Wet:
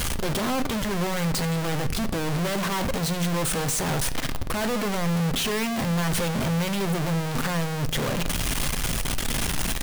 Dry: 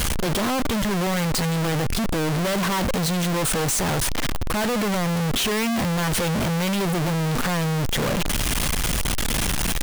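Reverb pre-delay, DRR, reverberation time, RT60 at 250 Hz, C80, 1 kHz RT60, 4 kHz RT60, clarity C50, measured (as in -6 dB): 8 ms, 11.0 dB, 0.70 s, 1.1 s, 19.5 dB, 0.65 s, 0.55 s, 16.5 dB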